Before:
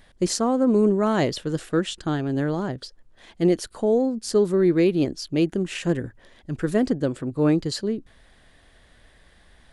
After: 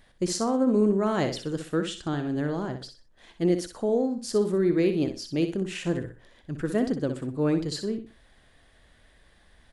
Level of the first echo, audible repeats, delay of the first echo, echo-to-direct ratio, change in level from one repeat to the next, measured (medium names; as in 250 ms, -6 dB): -8.5 dB, 3, 62 ms, -8.0 dB, -11.0 dB